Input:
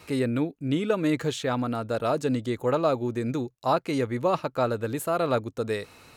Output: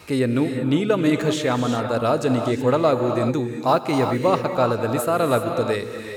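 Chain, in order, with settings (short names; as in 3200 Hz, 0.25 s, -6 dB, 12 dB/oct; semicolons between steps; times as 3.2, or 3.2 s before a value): 3.52–4.26 modulation noise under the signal 35 dB; non-linear reverb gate 0.4 s rising, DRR 5 dB; gain +5 dB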